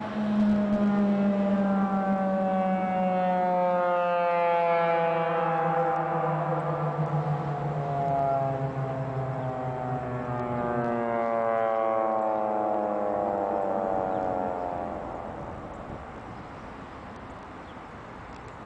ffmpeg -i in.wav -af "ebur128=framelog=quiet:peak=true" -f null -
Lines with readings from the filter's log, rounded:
Integrated loudness:
  I:         -27.0 LUFS
  Threshold: -37.7 LUFS
Loudness range:
  LRA:         9.3 LU
  Threshold: -47.7 LUFS
  LRA low:   -34.5 LUFS
  LRA high:  -25.2 LUFS
True peak:
  Peak:      -14.1 dBFS